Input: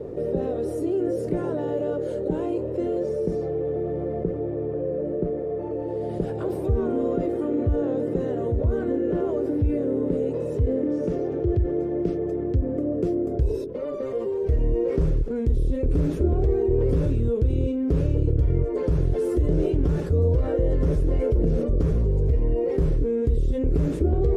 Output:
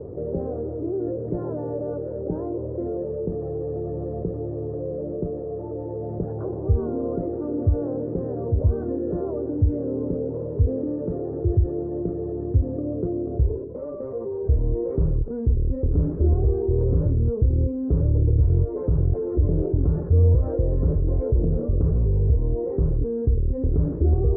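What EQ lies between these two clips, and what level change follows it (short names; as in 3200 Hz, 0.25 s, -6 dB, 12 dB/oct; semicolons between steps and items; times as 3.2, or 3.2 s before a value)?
LPF 1200 Hz 24 dB/oct; bell 89 Hz +8.5 dB 1.2 oct; -3.0 dB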